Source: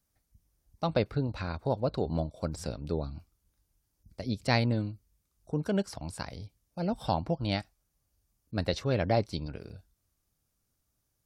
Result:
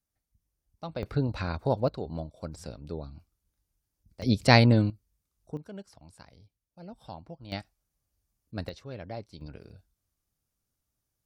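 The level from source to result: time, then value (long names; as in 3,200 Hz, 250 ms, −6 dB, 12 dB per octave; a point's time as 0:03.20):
−8.5 dB
from 0:01.03 +3 dB
from 0:01.88 −5 dB
from 0:04.22 +8 dB
from 0:04.90 −4.5 dB
from 0:05.57 −14 dB
from 0:07.52 −4 dB
from 0:08.69 −12.5 dB
from 0:09.41 −4.5 dB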